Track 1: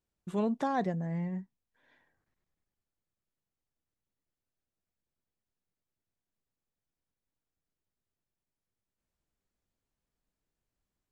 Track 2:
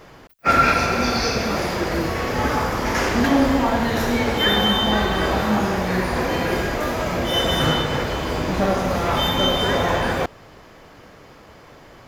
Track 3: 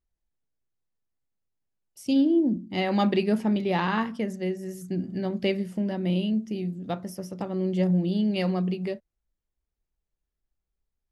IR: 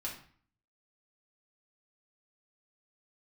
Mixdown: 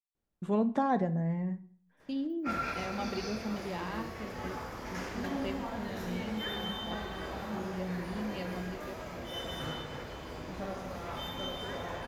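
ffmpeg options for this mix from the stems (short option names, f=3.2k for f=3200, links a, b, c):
-filter_complex "[0:a]highshelf=f=2.3k:g=-9,adelay=150,volume=0.5dB,asplit=2[a][b];[b]volume=-8dB[c];[1:a]adelay=2000,volume=-19dB[d];[2:a]agate=range=-25dB:threshold=-30dB:ratio=16:detection=peak,volume=-15dB,asplit=2[e][f];[f]volume=-10dB[g];[3:a]atrim=start_sample=2205[h];[c][g]amix=inputs=2:normalize=0[i];[i][h]afir=irnorm=-1:irlink=0[j];[a][d][e][j]amix=inputs=4:normalize=0"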